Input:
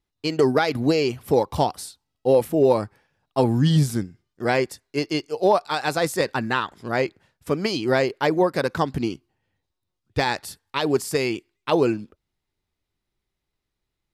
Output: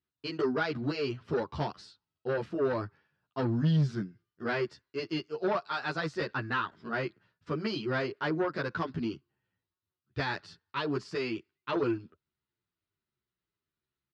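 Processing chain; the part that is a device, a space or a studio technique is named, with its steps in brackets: barber-pole flanger into a guitar amplifier (endless flanger 10.7 ms -1.3 Hz; saturation -17 dBFS, distortion -14 dB; cabinet simulation 100–4500 Hz, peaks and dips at 270 Hz -4 dB, 520 Hz -7 dB, 780 Hz -9 dB, 1.4 kHz +4 dB, 2.2 kHz -5 dB, 3.6 kHz -4 dB); trim -2.5 dB

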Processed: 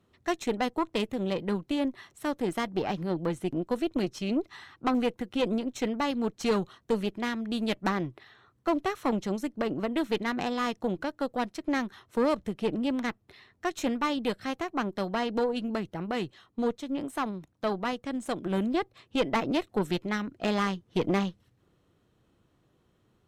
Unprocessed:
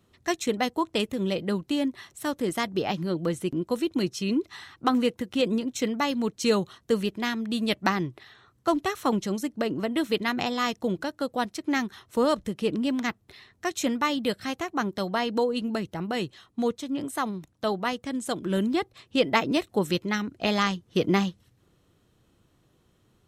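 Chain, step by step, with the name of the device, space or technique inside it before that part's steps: tube preamp driven hard (valve stage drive 20 dB, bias 0.65; bass shelf 160 Hz -3.5 dB; treble shelf 3.6 kHz -8.5 dB); trim +2 dB

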